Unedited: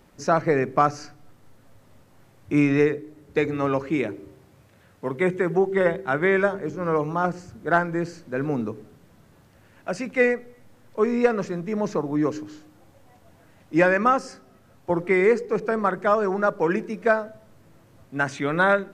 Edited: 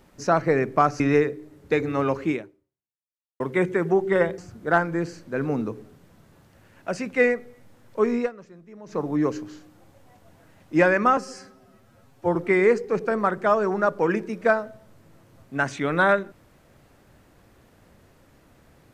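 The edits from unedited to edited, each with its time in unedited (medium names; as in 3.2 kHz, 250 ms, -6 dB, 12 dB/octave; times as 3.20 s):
1.00–2.65 s: delete
3.96–5.05 s: fade out exponential
6.03–7.38 s: delete
11.15–12.02 s: dip -18 dB, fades 0.16 s
14.17–14.96 s: stretch 1.5×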